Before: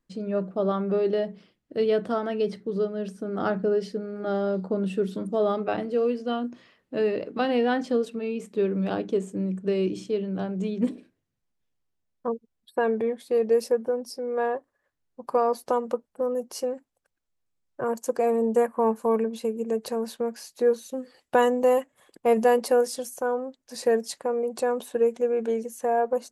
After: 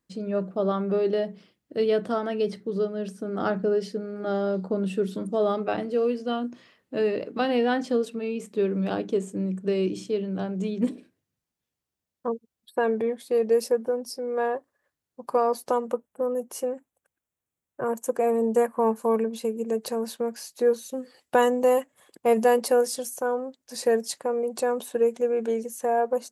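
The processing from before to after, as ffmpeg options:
-filter_complex "[0:a]asettb=1/sr,asplit=3[a][b][c];[a]atrim=end=15.874[d];[b]atrim=start=15.87:end=18.36,asetpts=PTS-STARTPTS,afade=t=in:d=0.004:c=qsin,afade=t=out:st=2.486:d=0.004:c=qsin,equalizer=f=4.7k:w=2.3:g=-12[e];[c]atrim=start=18.356[f];[d][e]acrossfade=d=0.004:c1=hsin:c2=qsin[g];[g][f]acrossfade=d=0.004:c1=qsin:c2=hsin,highpass=59,highshelf=f=5.5k:g=5"

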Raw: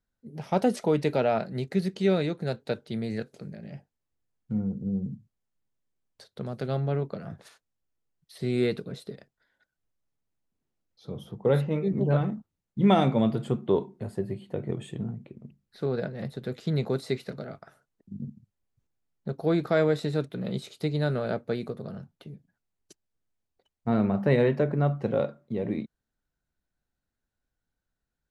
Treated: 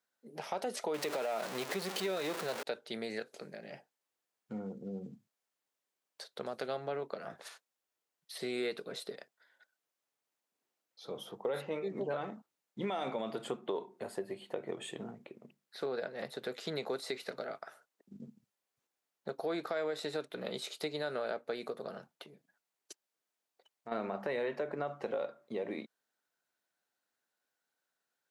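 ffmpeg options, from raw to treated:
-filter_complex "[0:a]asettb=1/sr,asplit=3[a][b][c];[a]atrim=end=0.944[d];[b]atrim=start=0.94:end=2.63,asetpts=PTS-STARTPTS,afade=t=in:d=0.004:c=qsin,afade=t=out:st=1.686:d=0.004:c=qsin,aeval=exprs='val(0)+0.5*0.0335*sgn(val(0))':c=same[e];[c]atrim=start=2.626[f];[d][e]acrossfade=d=0.004:c1=hsin:c2=qsin[g];[g][f]acrossfade=d=0.004:c1=qsin:c2=hsin,asplit=3[h][i][j];[h]afade=t=out:st=22.16:d=0.02[k];[i]acompressor=threshold=-43dB:ratio=3:attack=3.2:release=140:knee=1:detection=peak,afade=t=in:st=22.16:d=0.02,afade=t=out:st=23.91:d=0.02[l];[j]afade=t=in:st=23.91:d=0.02[m];[k][l][m]amix=inputs=3:normalize=0,highpass=510,alimiter=limit=-23dB:level=0:latency=1:release=45,acompressor=threshold=-40dB:ratio=2.5,volume=4dB"

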